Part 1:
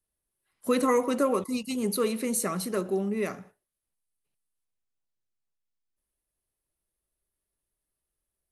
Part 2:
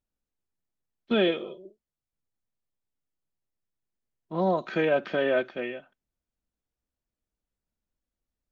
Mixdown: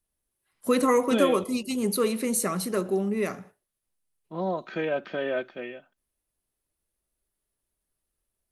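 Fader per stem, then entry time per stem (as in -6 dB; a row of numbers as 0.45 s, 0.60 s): +2.0 dB, -4.0 dB; 0.00 s, 0.00 s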